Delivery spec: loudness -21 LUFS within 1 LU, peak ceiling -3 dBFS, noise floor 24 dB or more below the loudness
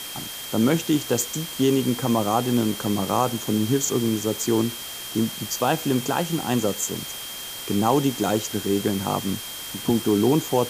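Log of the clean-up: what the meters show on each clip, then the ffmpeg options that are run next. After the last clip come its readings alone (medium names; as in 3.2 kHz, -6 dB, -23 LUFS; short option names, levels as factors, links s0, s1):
steady tone 3.2 kHz; tone level -37 dBFS; noise floor -35 dBFS; noise floor target -48 dBFS; loudness -23.5 LUFS; peak level -6.5 dBFS; loudness target -21.0 LUFS
-> -af "bandreject=f=3200:w=30"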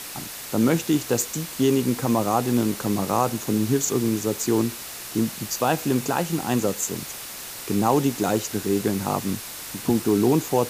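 steady tone not found; noise floor -36 dBFS; noise floor target -48 dBFS
-> -af "afftdn=nr=12:nf=-36"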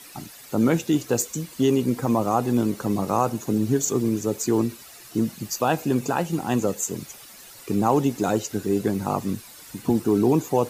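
noise floor -45 dBFS; noise floor target -48 dBFS
-> -af "afftdn=nr=6:nf=-45"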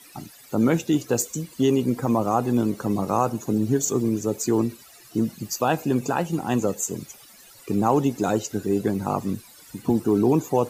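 noise floor -49 dBFS; loudness -24.0 LUFS; peak level -7.0 dBFS; loudness target -21.0 LUFS
-> -af "volume=1.41"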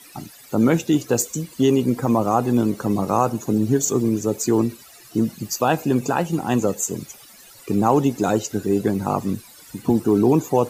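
loudness -21.0 LUFS; peak level -4.0 dBFS; noise floor -46 dBFS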